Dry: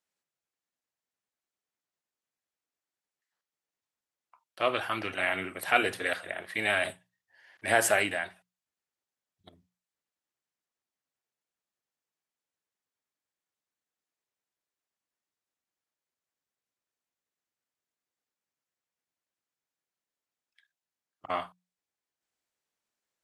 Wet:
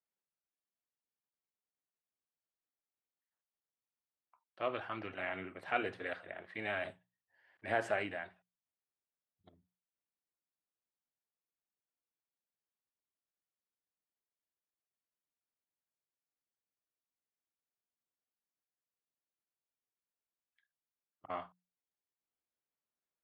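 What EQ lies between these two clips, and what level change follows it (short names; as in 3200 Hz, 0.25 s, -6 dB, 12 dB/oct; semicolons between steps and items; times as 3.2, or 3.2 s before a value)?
tape spacing loss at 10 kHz 27 dB; -6.5 dB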